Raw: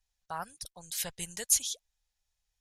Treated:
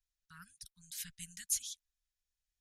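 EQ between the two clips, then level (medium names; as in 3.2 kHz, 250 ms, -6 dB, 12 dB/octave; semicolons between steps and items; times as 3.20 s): elliptic band-stop 190–1500 Hz, stop band 50 dB; -8.5 dB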